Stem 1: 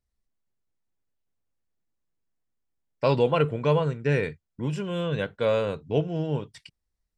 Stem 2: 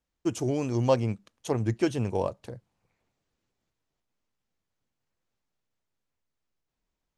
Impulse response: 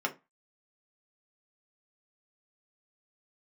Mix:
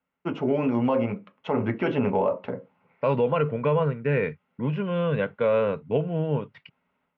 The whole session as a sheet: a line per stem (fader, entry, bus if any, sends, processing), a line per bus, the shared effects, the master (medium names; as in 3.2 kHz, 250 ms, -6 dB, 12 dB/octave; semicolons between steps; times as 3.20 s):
-3.0 dB, 0.00 s, no send, none
+3.0 dB, 0.00 s, send -3.5 dB, none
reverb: on, RT60 0.25 s, pre-delay 3 ms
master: level rider gain up to 9 dB; cabinet simulation 160–2400 Hz, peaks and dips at 340 Hz -10 dB, 750 Hz -5 dB, 1.7 kHz -5 dB; peak limiter -14 dBFS, peak gain reduction 10.5 dB